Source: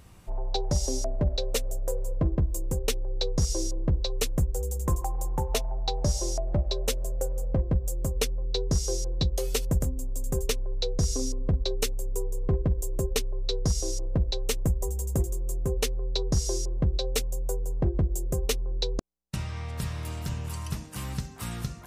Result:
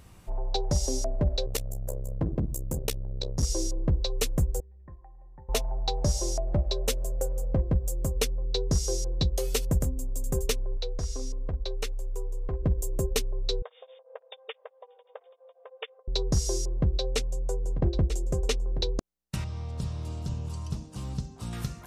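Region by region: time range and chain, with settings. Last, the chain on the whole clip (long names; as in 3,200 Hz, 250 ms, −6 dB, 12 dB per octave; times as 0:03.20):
0:01.46–0:03.43: high-shelf EQ 12,000 Hz +10 dB + saturating transformer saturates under 220 Hz
0:04.60–0:05.49: formant resonators in series e + phaser with its sweep stopped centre 1,200 Hz, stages 4
0:10.77–0:12.63: low-pass filter 2,300 Hz 6 dB per octave + upward compression, threshold −28 dBFS + parametric band 170 Hz −12 dB 2.7 octaves
0:13.62–0:16.08: dynamic equaliser 550 Hz, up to −4 dB, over −41 dBFS, Q 1.1 + linear-phase brick-wall band-pass 430–3,700 Hz + tremolo along a rectified sine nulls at 6 Hz
0:16.71–0:18.91: low-pass filter 6,900 Hz + single-tap delay 942 ms −11.5 dB
0:19.44–0:21.53: low-pass filter 5,900 Hz + parametric band 1,900 Hz −15 dB 1.4 octaves
whole clip: no processing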